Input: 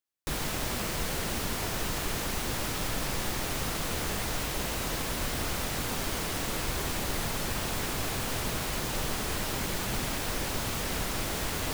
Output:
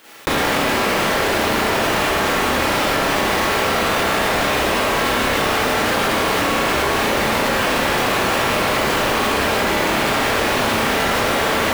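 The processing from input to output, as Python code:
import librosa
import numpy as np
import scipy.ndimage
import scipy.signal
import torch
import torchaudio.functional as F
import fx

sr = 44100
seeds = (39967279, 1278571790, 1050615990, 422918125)

y = fx.highpass(x, sr, hz=73.0, slope=6)
y = fx.bass_treble(y, sr, bass_db=-9, treble_db=-13)
y = fx.rev_schroeder(y, sr, rt60_s=0.83, comb_ms=28, drr_db=-8.5)
y = fx.env_flatten(y, sr, amount_pct=100)
y = y * 10.0 ** (8.0 / 20.0)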